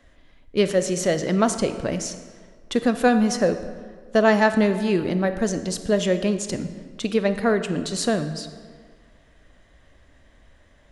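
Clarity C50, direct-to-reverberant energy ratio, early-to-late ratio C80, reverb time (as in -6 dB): 10.5 dB, 9.5 dB, 11.5 dB, 1.8 s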